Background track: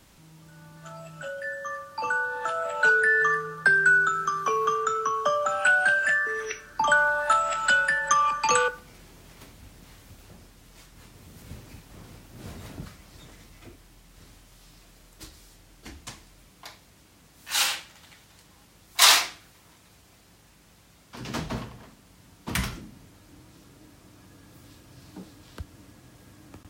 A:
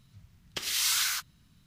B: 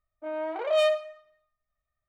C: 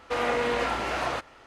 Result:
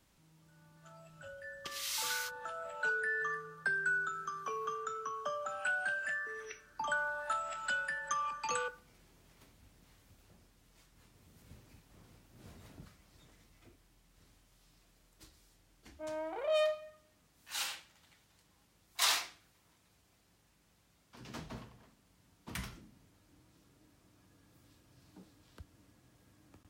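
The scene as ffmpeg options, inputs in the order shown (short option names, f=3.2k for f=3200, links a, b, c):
-filter_complex "[0:a]volume=-14dB[a];[1:a]atrim=end=1.66,asetpts=PTS-STARTPTS,volume=-10.5dB,afade=t=in:d=0.004:c=hsin,afade=t=out:st=1.656:d=0.004:c=hsin,adelay=1090[b];[2:a]atrim=end=2.08,asetpts=PTS-STARTPTS,volume=-8dB,afade=t=in:d=0.004:c=hsin,afade=t=out:st=2.076:d=0.004:c=hsin,adelay=15770[c];[a][b][c]amix=inputs=3:normalize=0"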